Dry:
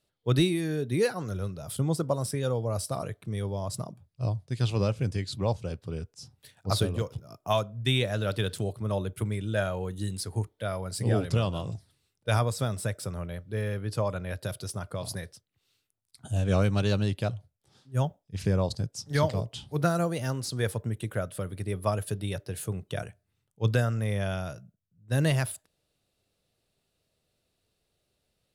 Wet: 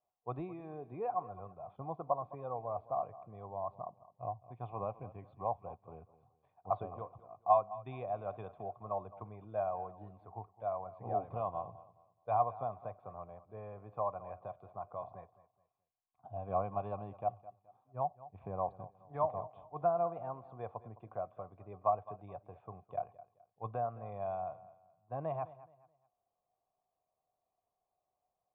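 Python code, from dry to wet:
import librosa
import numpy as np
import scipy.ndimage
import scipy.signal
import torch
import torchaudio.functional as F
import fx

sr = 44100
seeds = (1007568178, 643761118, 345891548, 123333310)

p1 = fx.formant_cascade(x, sr, vowel='a')
p2 = p1 + fx.echo_feedback(p1, sr, ms=212, feedback_pct=30, wet_db=-17.5, dry=0)
y = p2 * librosa.db_to_amplitude(7.5)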